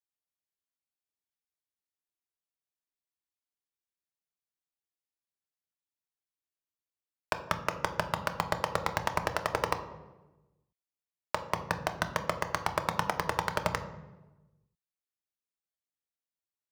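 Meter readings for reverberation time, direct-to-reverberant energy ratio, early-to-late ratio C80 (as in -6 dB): 1.1 s, 7.0 dB, 13.0 dB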